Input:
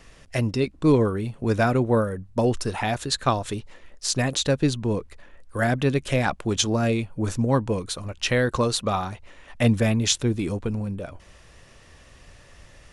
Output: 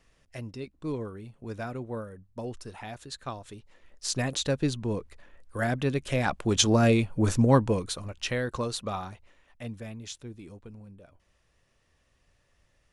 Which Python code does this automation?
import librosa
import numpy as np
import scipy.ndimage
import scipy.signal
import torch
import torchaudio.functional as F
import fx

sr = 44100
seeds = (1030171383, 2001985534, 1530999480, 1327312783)

y = fx.gain(x, sr, db=fx.line((3.58, -15.0), (4.07, -5.5), (6.09, -5.5), (6.71, 1.5), (7.51, 1.5), (8.4, -8.5), (9.09, -8.5), (9.62, -19.0)))